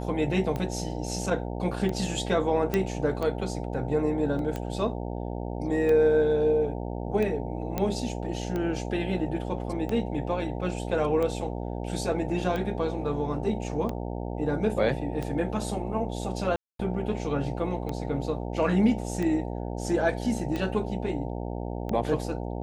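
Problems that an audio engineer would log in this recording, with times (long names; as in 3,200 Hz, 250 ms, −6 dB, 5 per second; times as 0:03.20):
mains buzz 60 Hz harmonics 15 −33 dBFS
scratch tick 45 rpm −19 dBFS
0:02.74: click −12 dBFS
0:04.39: drop-out 2 ms
0:07.78: click −14 dBFS
0:16.56–0:16.79: drop-out 233 ms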